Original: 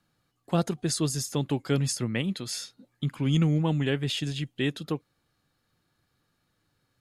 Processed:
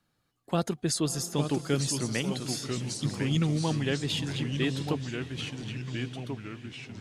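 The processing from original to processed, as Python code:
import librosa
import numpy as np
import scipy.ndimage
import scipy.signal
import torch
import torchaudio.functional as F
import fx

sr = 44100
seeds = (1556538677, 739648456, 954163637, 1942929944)

y = fx.echo_diffused(x, sr, ms=572, feedback_pct=53, wet_db=-14.0)
y = fx.echo_pitch(y, sr, ms=786, semitones=-2, count=3, db_per_echo=-6.0)
y = fx.hpss(y, sr, part='harmonic', gain_db=-4)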